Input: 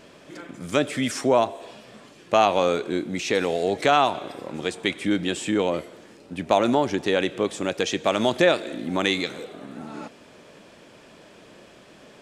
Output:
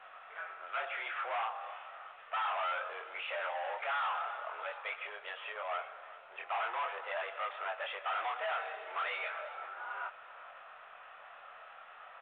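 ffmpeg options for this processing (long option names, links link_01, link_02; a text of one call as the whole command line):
ffmpeg -i in.wav -filter_complex "[0:a]equalizer=frequency=1200:width_type=o:width=0.41:gain=13,asplit=3[link_01][link_02][link_03];[link_01]afade=type=out:start_time=4.93:duration=0.02[link_04];[link_02]acompressor=threshold=-24dB:ratio=16,afade=type=in:start_time=4.93:duration=0.02,afade=type=out:start_time=5.68:duration=0.02[link_05];[link_03]afade=type=in:start_time=5.68:duration=0.02[link_06];[link_04][link_05][link_06]amix=inputs=3:normalize=0,asettb=1/sr,asplit=3[link_07][link_08][link_09];[link_07]atrim=end=8.564[link_10];[link_08]atrim=start=8.56:end=9.45,asetpts=PTS-STARTPTS,afade=type=in:duration=0.004:curve=qsin,afade=type=out:start_time=0.886:duration=0.004:curve=qsin,aecho=1:1:5.7:0.4,atrim=end_sample=39249[link_11];[link_09]atrim=start=9.446[link_12];[link_10][link_11]acrossfade=duration=0.004:curve1=hsin:curve2=qsin[link_13];[link_13][link_12]acrossfade=duration=0.004:curve1=qsin:curve2=hsin,asoftclip=type=hard:threshold=-12dB,flanger=delay=20:depth=6:speed=0.39,asplit=2[link_14][link_15];[link_15]highpass=frequency=720:poles=1,volume=7dB,asoftclip=type=tanh:threshold=-12dB[link_16];[link_14][link_16]amix=inputs=2:normalize=0,lowpass=frequency=2100:poles=1,volume=-6dB,asoftclip=type=tanh:threshold=-29dB,acrusher=bits=3:mode=log:mix=0:aa=0.000001,highpass=frequency=520:width_type=q:width=0.5412,highpass=frequency=520:width_type=q:width=1.307,lowpass=frequency=3000:width_type=q:width=0.5176,lowpass=frequency=3000:width_type=q:width=0.7071,lowpass=frequency=3000:width_type=q:width=1.932,afreqshift=110,aecho=1:1:389|778|1167:0.126|0.0453|0.0163,volume=-2dB" -ar 8000 -c:a pcm_alaw out.wav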